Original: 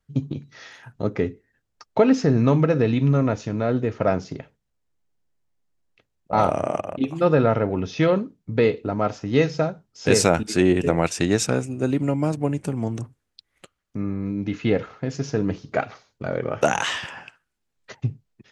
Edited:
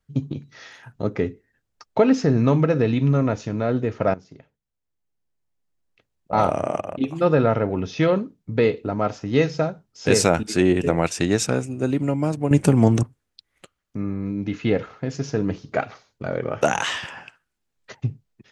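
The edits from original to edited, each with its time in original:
4.14–6.36 s: fade in linear, from -15.5 dB
12.51–13.03 s: gain +10.5 dB

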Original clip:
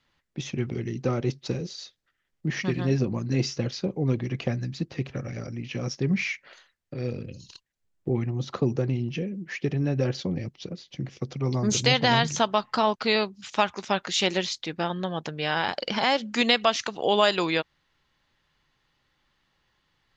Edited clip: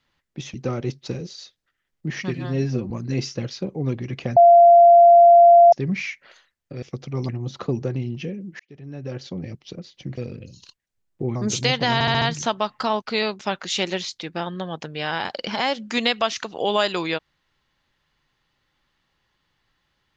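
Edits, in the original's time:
0.54–0.94 s: delete
2.75–3.12 s: stretch 1.5×
4.58–5.94 s: bleep 689 Hz -7 dBFS
7.04–8.22 s: swap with 11.11–11.57 s
9.53–10.59 s: fade in
12.15 s: stutter 0.07 s, 5 plays
13.33–13.83 s: delete

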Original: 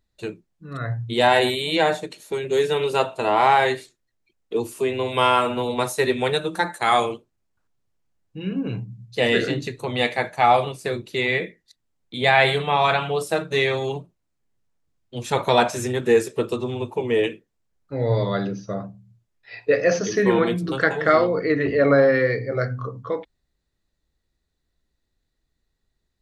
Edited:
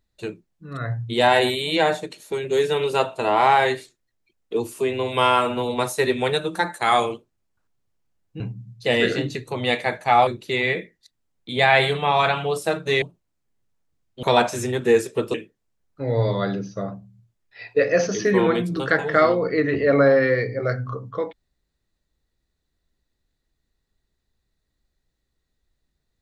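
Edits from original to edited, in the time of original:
8.40–8.72 s: delete
10.59–10.92 s: delete
13.67–13.97 s: delete
15.18–15.44 s: delete
16.55–17.26 s: delete

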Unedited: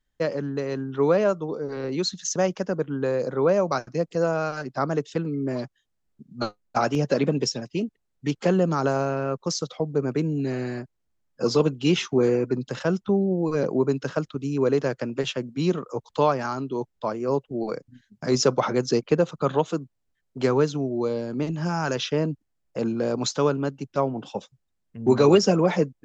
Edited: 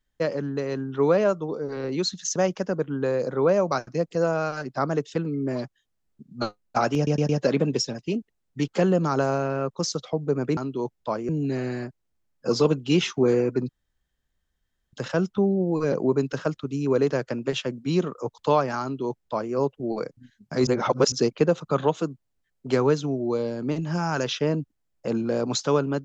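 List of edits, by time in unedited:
6.96 s: stutter 0.11 s, 4 plays
12.64 s: insert room tone 1.24 s
16.53–17.25 s: copy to 10.24 s
18.38–18.83 s: reverse

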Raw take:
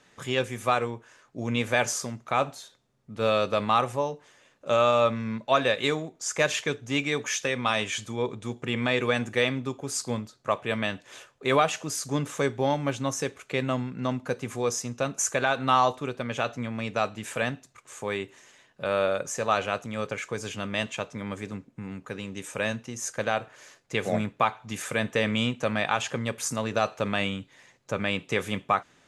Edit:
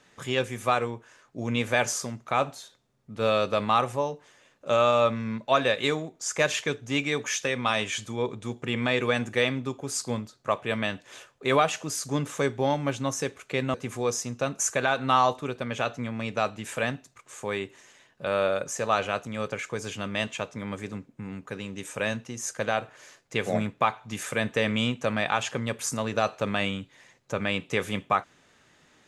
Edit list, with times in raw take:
13.74–14.33 s: delete

